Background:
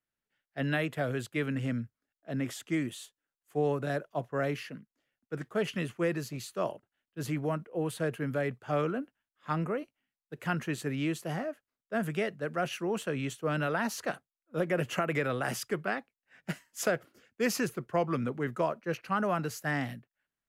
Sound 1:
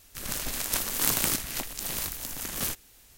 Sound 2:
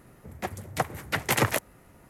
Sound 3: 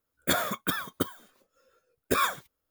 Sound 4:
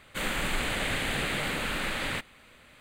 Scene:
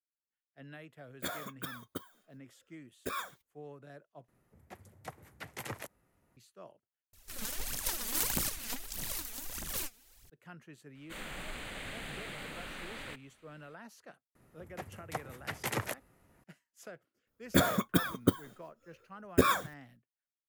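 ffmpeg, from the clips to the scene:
-filter_complex "[3:a]asplit=2[s0][s1];[2:a]asplit=2[s2][s3];[0:a]volume=0.106[s4];[1:a]aphaser=in_gain=1:out_gain=1:delay=4.8:decay=0.7:speed=1.6:type=triangular[s5];[s1]lowshelf=f=450:g=11.5[s6];[s4]asplit=3[s7][s8][s9];[s7]atrim=end=4.284[s10];[s2]atrim=end=2.09,asetpts=PTS-STARTPTS,volume=0.126[s11];[s8]atrim=start=6.366:end=7.134[s12];[s5]atrim=end=3.17,asetpts=PTS-STARTPTS,volume=0.335[s13];[s9]atrim=start=10.296[s14];[s0]atrim=end=2.7,asetpts=PTS-STARTPTS,volume=0.237,afade=t=in:d=0.004:c=hsin,afade=t=out:st=2.696:d=0.004:c=hsin,adelay=950[s15];[4:a]atrim=end=2.8,asetpts=PTS-STARTPTS,volume=0.224,afade=t=in:d=0.004:c=hsin,afade=t=out:st=2.796:d=0.004:c=hsin,adelay=10950[s16];[s3]atrim=end=2.09,asetpts=PTS-STARTPTS,volume=0.282,afade=t=in:d=0.004:c=hsin,afade=t=out:st=2.086:d=0.004:c=hsin,adelay=14350[s17];[s6]atrim=end=2.7,asetpts=PTS-STARTPTS,volume=0.631,afade=t=in:d=0.004:c=hsin,afade=t=out:st=2.696:d=0.004:c=hsin,adelay=17270[s18];[s10][s11]acrossfade=d=0.004:c1=hsin:c2=hsin[s19];[s19][s12]acrossfade=d=0.004:c1=hsin:c2=hsin[s20];[s20][s13]acrossfade=d=0.004:c1=hsin:c2=hsin[s21];[s21][s14]acrossfade=d=0.004:c1=hsin:c2=hsin[s22];[s22][s15][s16][s17][s18]amix=inputs=5:normalize=0"

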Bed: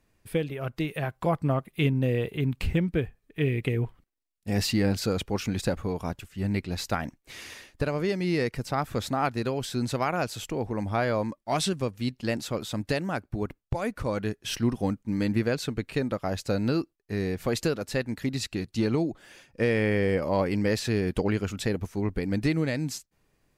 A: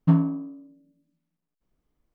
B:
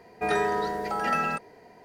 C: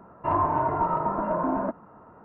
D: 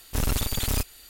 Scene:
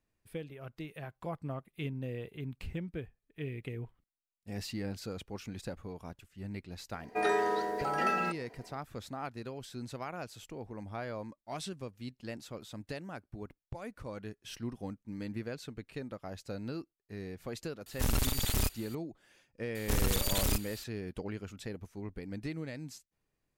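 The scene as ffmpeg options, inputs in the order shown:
-filter_complex "[4:a]asplit=2[s0][s1];[0:a]volume=0.211[s2];[2:a]lowshelf=f=200:t=q:w=1.5:g=-9[s3];[s1]acompressor=threshold=0.0562:ratio=6:attack=3.2:release=140:knee=1:detection=peak[s4];[s3]atrim=end=1.84,asetpts=PTS-STARTPTS,volume=0.596,afade=t=in:d=0.004:c=hsin,afade=t=out:st=1.836:d=0.004:c=hsin,adelay=6940[s5];[s0]atrim=end=1.09,asetpts=PTS-STARTPTS,volume=0.596,afade=t=in:d=0.004:c=hsin,afade=t=out:st=1.086:d=0.004:c=hsin,adelay=17860[s6];[s4]atrim=end=1.09,asetpts=PTS-STARTPTS,volume=0.944,afade=t=in:d=0.004:c=hsin,afade=t=out:st=1.086:d=0.004:c=hsin,adelay=19750[s7];[s2][s5][s6][s7]amix=inputs=4:normalize=0"

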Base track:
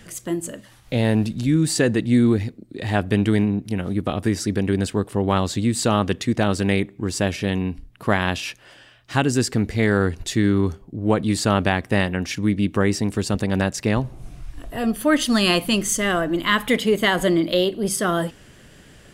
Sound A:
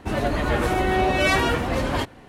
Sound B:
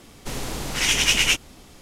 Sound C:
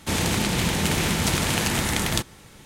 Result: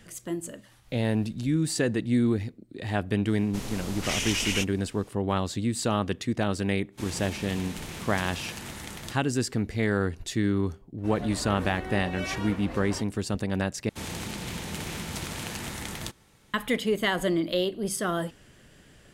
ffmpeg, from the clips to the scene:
-filter_complex "[3:a]asplit=2[s0][s1];[0:a]volume=0.447[s2];[2:a]alimiter=limit=0.251:level=0:latency=1:release=15[s3];[s2]asplit=2[s4][s5];[s4]atrim=end=13.894[s6];[s1]atrim=end=2.65,asetpts=PTS-STARTPTS,volume=0.251[s7];[s5]atrim=start=16.536[s8];[s3]atrim=end=1.81,asetpts=PTS-STARTPTS,volume=0.447,afade=t=in:d=0.004:c=hsin,afade=t=out:st=1.806:d=0.004:c=hsin,adelay=3280[s9];[s0]atrim=end=2.65,asetpts=PTS-STARTPTS,volume=0.168,afade=t=in:d=0.05,afade=t=out:st=2.6:d=0.05,adelay=6910[s10];[1:a]atrim=end=2.28,asetpts=PTS-STARTPTS,volume=0.178,afade=t=in:d=0.004:c=hsin,afade=t=out:st=2.276:d=0.004:c=hsin,adelay=484218S[s11];[s6][s7]acrossfade=d=0.004:c1=hsin:c2=hsin[s12];[s12][s8]acrossfade=d=0.004:c1=hsin:c2=hsin[s13];[s13][s9][s10][s11]amix=inputs=4:normalize=0"

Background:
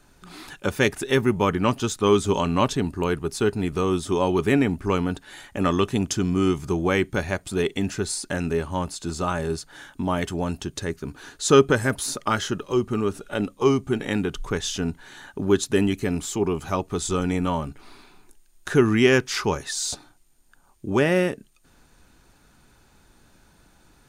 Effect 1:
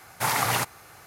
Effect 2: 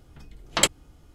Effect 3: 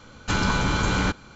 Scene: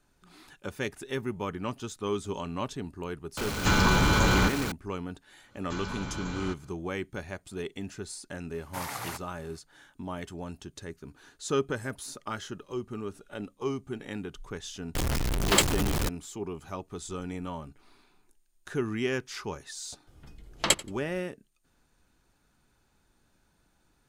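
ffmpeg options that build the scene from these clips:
-filter_complex "[3:a]asplit=2[s0][s1];[2:a]asplit=2[s2][s3];[0:a]volume=0.237[s4];[s0]aeval=exprs='val(0)+0.5*0.0447*sgn(val(0))':c=same[s5];[s2]aeval=exprs='val(0)+0.5*0.158*sgn(val(0))':c=same[s6];[s3]aecho=1:1:88|176:0.1|0.02[s7];[s5]atrim=end=1.35,asetpts=PTS-STARTPTS,volume=0.841,afade=t=in:d=0.004:c=hsin,afade=t=out:st=1.346:d=0.004:c=hsin,adelay=148617S[s8];[s1]atrim=end=1.35,asetpts=PTS-STARTPTS,volume=0.188,afade=t=in:d=0.1,afade=t=out:st=1.25:d=0.1,adelay=5420[s9];[1:a]atrim=end=1.06,asetpts=PTS-STARTPTS,volume=0.237,afade=t=in:d=0.004:c=hsin,afade=t=out:st=1.056:d=0.004:c=hsin,adelay=8530[s10];[s6]atrim=end=1.14,asetpts=PTS-STARTPTS,volume=0.531,afade=t=in:d=0.004:c=hsin,afade=t=out:st=1.136:d=0.004:c=hsin,adelay=14950[s11];[s7]atrim=end=1.14,asetpts=PTS-STARTPTS,volume=0.668,afade=t=in:d=0.004:c=hsin,afade=t=out:st=1.136:d=0.004:c=hsin,adelay=20070[s12];[s4][s8][s9][s10][s11][s12]amix=inputs=6:normalize=0"

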